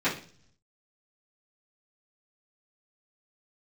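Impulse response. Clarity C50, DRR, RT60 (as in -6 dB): 9.0 dB, -13.5 dB, 0.45 s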